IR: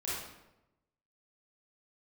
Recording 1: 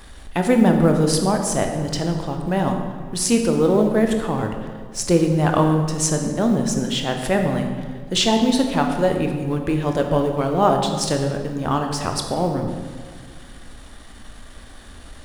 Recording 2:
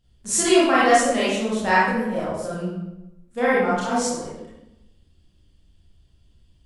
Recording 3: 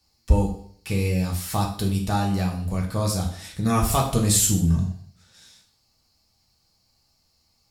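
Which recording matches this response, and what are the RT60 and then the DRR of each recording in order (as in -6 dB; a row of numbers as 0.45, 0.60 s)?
2; 1.8, 0.95, 0.55 s; 3.5, -9.0, -1.0 dB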